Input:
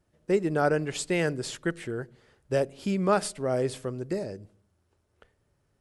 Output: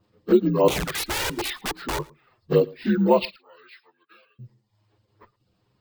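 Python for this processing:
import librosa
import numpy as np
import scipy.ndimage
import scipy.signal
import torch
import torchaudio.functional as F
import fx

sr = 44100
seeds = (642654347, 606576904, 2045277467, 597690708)

p1 = fx.partial_stretch(x, sr, pct=80)
p2 = fx.dereverb_blind(p1, sr, rt60_s=0.65)
p3 = fx.level_steps(p2, sr, step_db=20)
p4 = p2 + (p3 * librosa.db_to_amplitude(-3.0))
p5 = fx.overflow_wrap(p4, sr, gain_db=27.0, at=(0.68, 1.99))
p6 = fx.ladder_bandpass(p5, sr, hz=2100.0, resonance_pct=35, at=(3.25, 4.39))
p7 = fx.env_flanger(p6, sr, rest_ms=9.8, full_db=-22.0)
p8 = p7 + fx.echo_single(p7, sr, ms=111, db=-24.0, dry=0)
p9 = np.repeat(p8[::2], 2)[:len(p8)]
y = p9 * librosa.db_to_amplitude(8.5)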